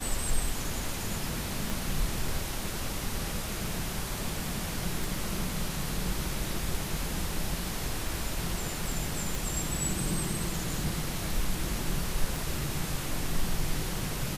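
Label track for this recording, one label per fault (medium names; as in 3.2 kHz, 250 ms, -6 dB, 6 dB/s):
1.700000	1.700000	pop
5.040000	5.040000	pop
9.350000	9.350000	pop
12.360000	12.360000	pop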